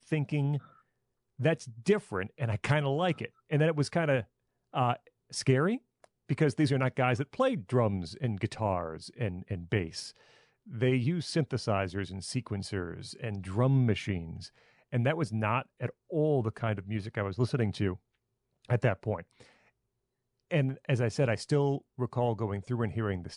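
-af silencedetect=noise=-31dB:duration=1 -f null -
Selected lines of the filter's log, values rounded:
silence_start: 19.20
silence_end: 20.51 | silence_duration: 1.32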